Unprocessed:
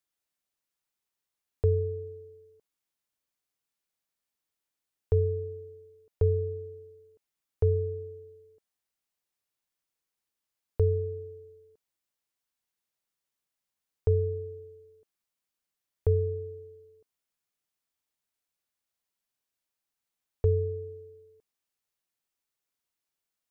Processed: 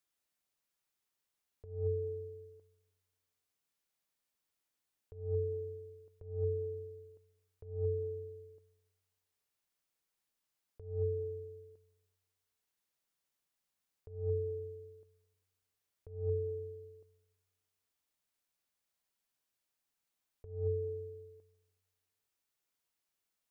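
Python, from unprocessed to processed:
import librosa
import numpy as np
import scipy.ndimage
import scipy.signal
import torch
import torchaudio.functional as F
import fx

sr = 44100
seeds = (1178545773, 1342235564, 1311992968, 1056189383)

y = fx.over_compress(x, sr, threshold_db=-31.0, ratio=-0.5)
y = fx.rev_freeverb(y, sr, rt60_s=1.2, hf_ratio=0.4, predelay_ms=100, drr_db=15.0)
y = y * librosa.db_to_amplitude(-4.5)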